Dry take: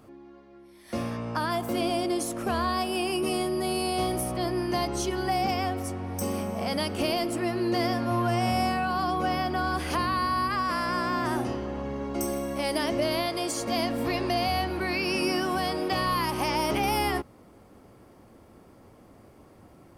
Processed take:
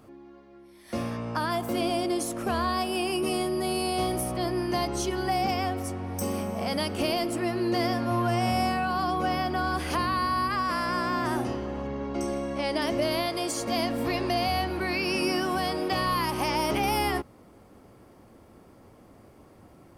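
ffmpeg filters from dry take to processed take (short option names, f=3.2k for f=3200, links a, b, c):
-filter_complex "[0:a]asettb=1/sr,asplit=3[a][b][c];[a]atrim=end=11.874[d];[b]atrim=start=11.87:end=12.82,asetpts=PTS-STARTPTS,afade=t=in:d=0.004:c=qsin,afade=t=out:st=0.946:d=0.004:c=qsin,lowpass=5.6k[e];[c]atrim=start=12.816[f];[d][e]acrossfade=d=0.004:c1=hsin:c2=qsin[g];[g][f]acrossfade=d=0.004:c1=qsin:c2=hsin"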